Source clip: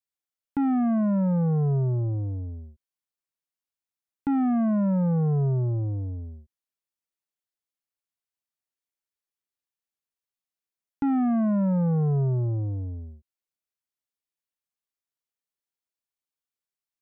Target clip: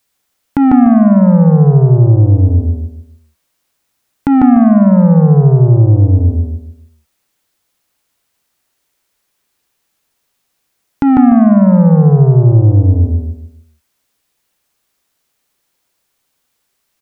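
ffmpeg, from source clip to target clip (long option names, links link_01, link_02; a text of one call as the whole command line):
ffmpeg -i in.wav -filter_complex "[0:a]acompressor=threshold=-35dB:ratio=4,asplit=2[link_01][link_02];[link_02]adelay=148,lowpass=frequency=1900:poles=1,volume=-3dB,asplit=2[link_03][link_04];[link_04]adelay=148,lowpass=frequency=1900:poles=1,volume=0.32,asplit=2[link_05][link_06];[link_06]adelay=148,lowpass=frequency=1900:poles=1,volume=0.32,asplit=2[link_07][link_08];[link_08]adelay=148,lowpass=frequency=1900:poles=1,volume=0.32[link_09];[link_01][link_03][link_05][link_07][link_09]amix=inputs=5:normalize=0,alimiter=level_in=26dB:limit=-1dB:release=50:level=0:latency=1,volume=-1dB" out.wav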